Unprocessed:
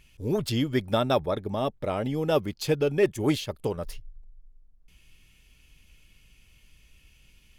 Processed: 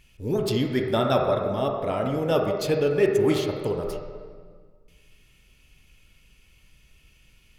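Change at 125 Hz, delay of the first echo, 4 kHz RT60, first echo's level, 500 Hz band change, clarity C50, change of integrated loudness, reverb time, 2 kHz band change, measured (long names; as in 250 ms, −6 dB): +1.5 dB, no echo audible, 1.3 s, no echo audible, +4.0 dB, 2.5 dB, +3.0 dB, 1.7 s, +2.0 dB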